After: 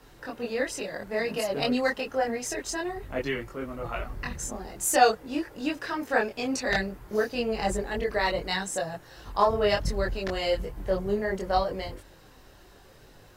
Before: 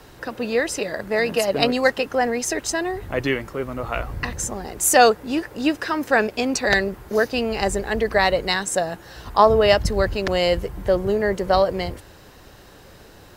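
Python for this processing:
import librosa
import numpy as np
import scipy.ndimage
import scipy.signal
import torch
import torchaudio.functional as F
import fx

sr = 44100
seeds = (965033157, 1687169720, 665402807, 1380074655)

y = np.clip(x, -10.0 ** (-2.5 / 20.0), 10.0 ** (-2.5 / 20.0))
y = fx.chorus_voices(y, sr, voices=6, hz=0.54, base_ms=23, depth_ms=4.1, mix_pct=50)
y = y * librosa.db_to_amplitude(-4.5)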